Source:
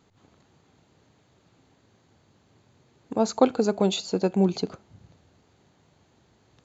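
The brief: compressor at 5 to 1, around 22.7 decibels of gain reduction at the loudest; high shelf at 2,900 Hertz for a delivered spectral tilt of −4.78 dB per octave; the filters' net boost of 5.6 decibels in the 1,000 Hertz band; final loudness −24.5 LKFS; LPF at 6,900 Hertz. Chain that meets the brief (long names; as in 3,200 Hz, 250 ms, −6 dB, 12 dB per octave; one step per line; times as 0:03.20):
low-pass filter 6,900 Hz
parametric band 1,000 Hz +7 dB
high-shelf EQ 2,900 Hz +5 dB
downward compressor 5 to 1, threshold −37 dBFS
level +16.5 dB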